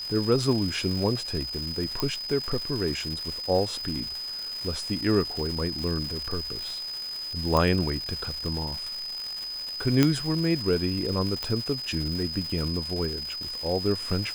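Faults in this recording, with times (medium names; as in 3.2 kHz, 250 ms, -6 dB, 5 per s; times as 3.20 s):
crackle 460 per s -32 dBFS
whine 5 kHz -32 dBFS
2.00 s: pop -12 dBFS
7.57 s: pop -11 dBFS
10.03 s: pop -6 dBFS
11.43 s: pop -15 dBFS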